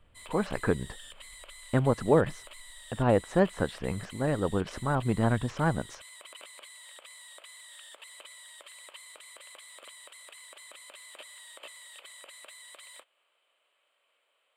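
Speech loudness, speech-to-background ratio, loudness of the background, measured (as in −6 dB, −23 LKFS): −29.0 LKFS, 18.0 dB, −47.0 LKFS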